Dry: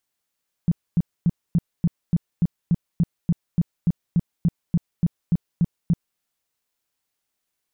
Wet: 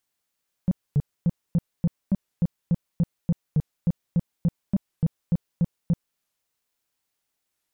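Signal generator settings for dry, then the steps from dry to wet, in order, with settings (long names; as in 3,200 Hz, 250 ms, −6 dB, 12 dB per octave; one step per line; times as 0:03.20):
tone bursts 170 Hz, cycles 6, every 0.29 s, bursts 19, −14 dBFS
soft clipping −15 dBFS
wow of a warped record 45 rpm, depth 250 cents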